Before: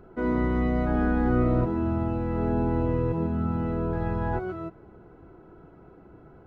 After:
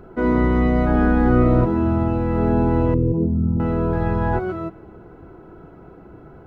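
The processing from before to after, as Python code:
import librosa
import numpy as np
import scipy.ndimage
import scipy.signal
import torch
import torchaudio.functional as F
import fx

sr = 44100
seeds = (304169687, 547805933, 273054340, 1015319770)

y = fx.envelope_sharpen(x, sr, power=2.0, at=(2.94, 3.6))
y = fx.rev_spring(y, sr, rt60_s=1.3, pass_ms=(34,), chirp_ms=80, drr_db=18.5)
y = y * 10.0 ** (7.5 / 20.0)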